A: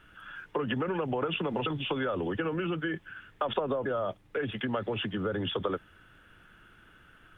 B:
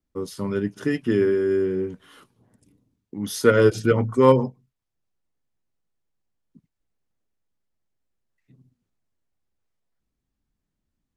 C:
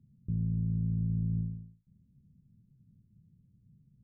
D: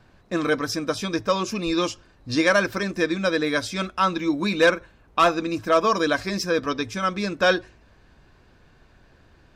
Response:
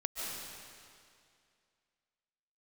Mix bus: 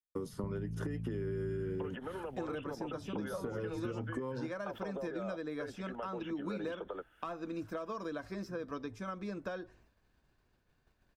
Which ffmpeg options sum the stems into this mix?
-filter_complex "[0:a]highpass=490,bandreject=f=1.1k:w=6.2,adelay=1250,volume=-6.5dB[a];[1:a]acompressor=threshold=-25dB:ratio=6,volume=0.5dB[b];[2:a]adelay=150,volume=2.5dB[c];[3:a]adelay=2050,volume=-11.5dB[d];[b][d]amix=inputs=2:normalize=0,agate=range=-33dB:threshold=-58dB:ratio=3:detection=peak,acompressor=threshold=-33dB:ratio=5,volume=0dB[e];[a][c]amix=inputs=2:normalize=0,lowshelf=f=180:g=9.5,acompressor=threshold=-32dB:ratio=6,volume=0dB[f];[e][f]amix=inputs=2:normalize=0,highshelf=f=9.1k:g=8,acrossover=split=270|1500[g][h][i];[g]acompressor=threshold=-40dB:ratio=4[j];[h]acompressor=threshold=-38dB:ratio=4[k];[i]acompressor=threshold=-59dB:ratio=4[l];[j][k][l]amix=inputs=3:normalize=0"

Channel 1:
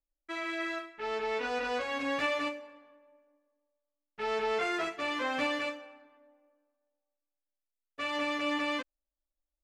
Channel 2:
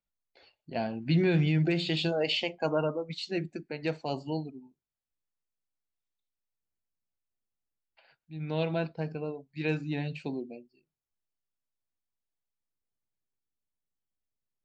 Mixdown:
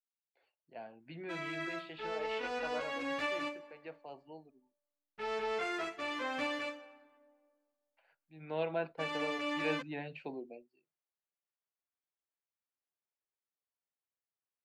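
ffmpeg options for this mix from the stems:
-filter_complex "[0:a]adelay=1000,volume=-5dB[a];[1:a]highpass=58,acrossover=split=380 2900:gain=0.2 1 0.0891[b][c][d];[b][c][d]amix=inputs=3:normalize=0,volume=-1.5dB,afade=t=in:st=7.81:d=0.77:silence=0.266073[e];[a][e]amix=inputs=2:normalize=0"

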